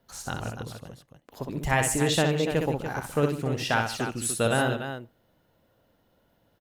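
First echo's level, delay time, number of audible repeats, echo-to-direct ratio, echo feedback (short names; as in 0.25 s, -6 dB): -5.0 dB, 62 ms, 3, -3.5 dB, no steady repeat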